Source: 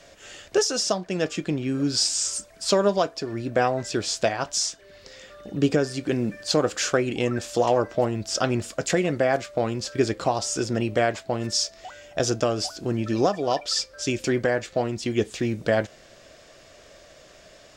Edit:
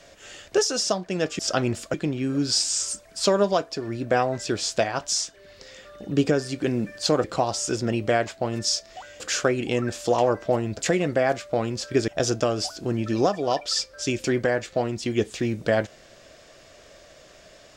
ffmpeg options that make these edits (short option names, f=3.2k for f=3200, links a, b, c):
-filter_complex "[0:a]asplit=7[a][b][c][d][e][f][g];[a]atrim=end=1.392[h];[b]atrim=start=8.258:end=8.812[i];[c]atrim=start=1.388:end=6.692[j];[d]atrim=start=10.118:end=12.082[k];[e]atrim=start=6.688:end=8.262[l];[f]atrim=start=8.808:end=10.122[m];[g]atrim=start=12.078[n];[h][i]acrossfade=d=0.004:c1=hsin:c2=hsin[o];[o][j]acrossfade=d=0.004:c1=hsin:c2=hsin[p];[p][k]acrossfade=d=0.004:c1=hsin:c2=hsin[q];[q][l]acrossfade=d=0.004:c1=hsin:c2=hsin[r];[r][m]acrossfade=d=0.004:c1=hsin:c2=hsin[s];[s][n]acrossfade=d=0.004:c1=hsin:c2=hsin"